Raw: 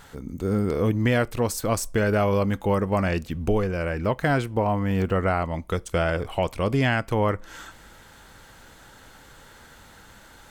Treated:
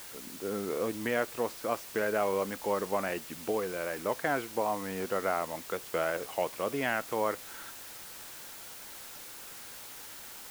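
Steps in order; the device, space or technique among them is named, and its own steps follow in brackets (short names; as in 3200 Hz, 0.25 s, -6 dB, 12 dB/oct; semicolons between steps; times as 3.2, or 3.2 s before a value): wax cylinder (BPF 340–2700 Hz; wow and flutter; white noise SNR 12 dB); gain -5.5 dB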